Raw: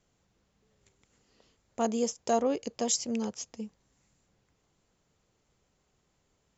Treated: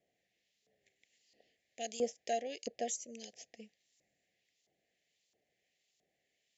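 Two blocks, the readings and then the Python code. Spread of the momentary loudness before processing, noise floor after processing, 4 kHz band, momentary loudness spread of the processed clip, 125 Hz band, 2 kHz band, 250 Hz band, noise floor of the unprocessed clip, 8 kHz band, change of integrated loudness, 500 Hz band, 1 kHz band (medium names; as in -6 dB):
15 LU, -83 dBFS, -9.0 dB, 17 LU, under -15 dB, -4.0 dB, -16.0 dB, -75 dBFS, no reading, -9.0 dB, -8.0 dB, -8.0 dB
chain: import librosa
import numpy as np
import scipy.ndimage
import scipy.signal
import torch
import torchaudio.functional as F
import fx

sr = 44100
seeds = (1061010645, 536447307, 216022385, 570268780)

y = fx.spec_box(x, sr, start_s=2.9, length_s=0.28, low_hz=650.0, high_hz=5700.0, gain_db=-15)
y = scipy.signal.sosfilt(scipy.signal.ellip(3, 1.0, 40, [720.0, 1800.0], 'bandstop', fs=sr, output='sos'), y)
y = fx.filter_lfo_bandpass(y, sr, shape='saw_up', hz=1.5, low_hz=830.0, high_hz=5000.0, q=1.0)
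y = F.gain(torch.from_numpy(y), 2.5).numpy()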